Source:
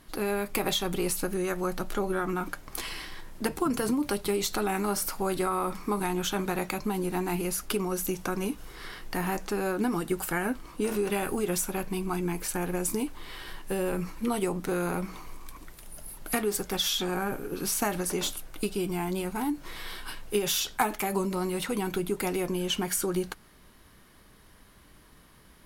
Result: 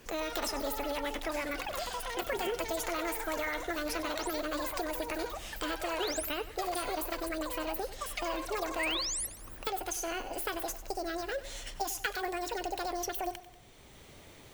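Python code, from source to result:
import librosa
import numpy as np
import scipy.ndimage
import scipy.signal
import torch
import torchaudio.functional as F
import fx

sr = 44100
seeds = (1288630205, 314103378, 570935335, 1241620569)

p1 = fx.speed_glide(x, sr, from_pct=154, to_pct=199)
p2 = fx.spec_paint(p1, sr, seeds[0], shape='rise', start_s=8.79, length_s=0.48, low_hz=1800.0, high_hz=12000.0, level_db=-27.0)
p3 = fx.echo_pitch(p2, sr, ms=134, semitones=7, count=2, db_per_echo=-6.0)
p4 = p3 + fx.echo_feedback(p3, sr, ms=94, feedback_pct=45, wet_db=-15.5, dry=0)
p5 = fx.band_squash(p4, sr, depth_pct=40)
y = p5 * 10.0 ** (-6.5 / 20.0)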